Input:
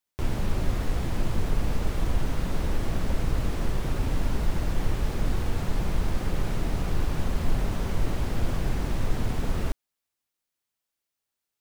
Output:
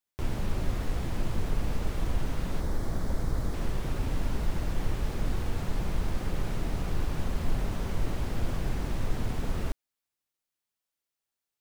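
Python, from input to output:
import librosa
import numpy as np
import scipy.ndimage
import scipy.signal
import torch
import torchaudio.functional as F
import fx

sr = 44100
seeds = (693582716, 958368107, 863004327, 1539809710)

y = fx.peak_eq(x, sr, hz=2700.0, db=-11.0, octaves=0.53, at=(2.6, 3.54))
y = F.gain(torch.from_numpy(y), -3.5).numpy()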